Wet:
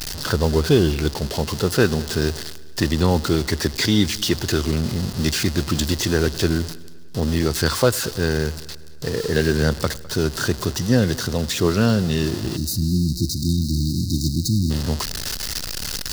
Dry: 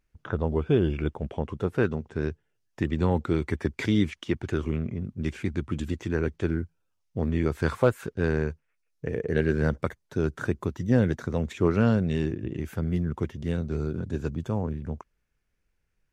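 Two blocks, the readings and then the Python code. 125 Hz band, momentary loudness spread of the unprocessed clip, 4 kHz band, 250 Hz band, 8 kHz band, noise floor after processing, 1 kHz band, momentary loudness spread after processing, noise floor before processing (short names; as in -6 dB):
+6.5 dB, 9 LU, +20.5 dB, +6.0 dB, +25.5 dB, -34 dBFS, +7.0 dB, 7 LU, -75 dBFS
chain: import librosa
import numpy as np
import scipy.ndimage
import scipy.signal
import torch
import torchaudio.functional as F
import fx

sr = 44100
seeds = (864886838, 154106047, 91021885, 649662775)

y = x + 0.5 * 10.0 ** (-34.0 / 20.0) * np.sign(x)
y = fx.high_shelf(y, sr, hz=3400.0, db=10.0)
y = fx.notch(y, sr, hz=2300.0, q=7.6)
y = fx.spec_erase(y, sr, start_s=12.57, length_s=2.13, low_hz=360.0, high_hz=3700.0)
y = fx.echo_heads(y, sr, ms=103, heads='first and second', feedback_pct=55, wet_db=-24.0)
y = fx.rider(y, sr, range_db=4, speed_s=2.0)
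y = fx.peak_eq(y, sr, hz=4700.0, db=11.5, octaves=0.64)
y = F.gain(torch.from_numpy(y), 4.5).numpy()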